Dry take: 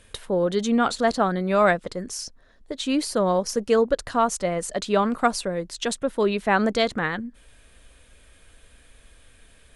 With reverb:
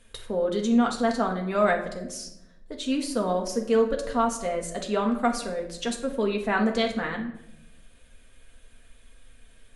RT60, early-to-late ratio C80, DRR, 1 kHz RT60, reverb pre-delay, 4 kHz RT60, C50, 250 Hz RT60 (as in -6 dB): 0.85 s, 12.0 dB, 0.5 dB, 0.75 s, 4 ms, 0.50 s, 8.5 dB, 1.1 s